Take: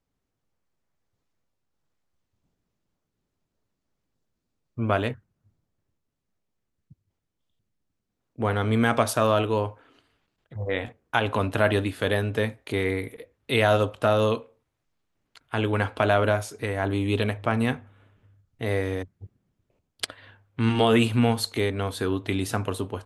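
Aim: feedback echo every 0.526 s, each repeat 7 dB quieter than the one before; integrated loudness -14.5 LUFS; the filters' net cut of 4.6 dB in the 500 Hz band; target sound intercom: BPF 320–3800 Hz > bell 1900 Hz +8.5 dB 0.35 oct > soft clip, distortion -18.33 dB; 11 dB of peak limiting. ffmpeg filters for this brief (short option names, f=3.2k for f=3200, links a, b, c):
-af "equalizer=f=500:t=o:g=-5,alimiter=limit=-18dB:level=0:latency=1,highpass=320,lowpass=3.8k,equalizer=f=1.9k:t=o:w=0.35:g=8.5,aecho=1:1:526|1052|1578|2104|2630:0.447|0.201|0.0905|0.0407|0.0183,asoftclip=threshold=-22.5dB,volume=20dB"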